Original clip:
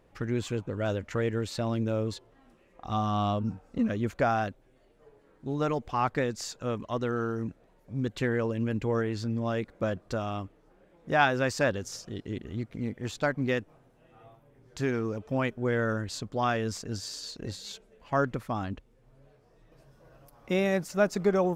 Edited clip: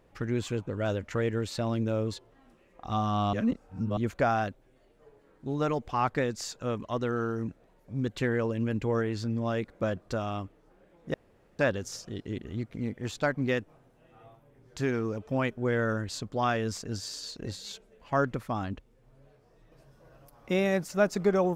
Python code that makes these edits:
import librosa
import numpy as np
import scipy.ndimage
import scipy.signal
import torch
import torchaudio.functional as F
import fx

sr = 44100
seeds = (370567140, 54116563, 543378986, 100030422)

y = fx.edit(x, sr, fx.reverse_span(start_s=3.33, length_s=0.64),
    fx.room_tone_fill(start_s=11.14, length_s=0.45), tone=tone)